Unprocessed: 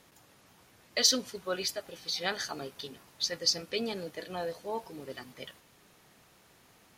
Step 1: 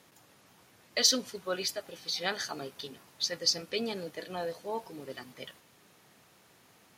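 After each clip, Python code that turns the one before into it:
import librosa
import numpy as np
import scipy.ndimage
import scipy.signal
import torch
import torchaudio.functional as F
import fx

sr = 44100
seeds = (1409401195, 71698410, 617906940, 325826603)

y = scipy.signal.sosfilt(scipy.signal.butter(2, 90.0, 'highpass', fs=sr, output='sos'), x)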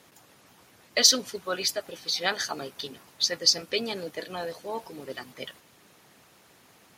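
y = fx.hpss(x, sr, part='harmonic', gain_db=-6)
y = y * librosa.db_to_amplitude(6.5)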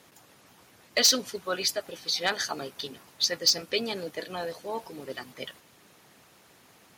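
y = np.clip(10.0 ** (14.5 / 20.0) * x, -1.0, 1.0) / 10.0 ** (14.5 / 20.0)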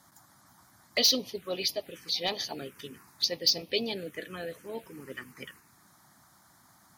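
y = fx.env_phaser(x, sr, low_hz=440.0, high_hz=1500.0, full_db=-26.0)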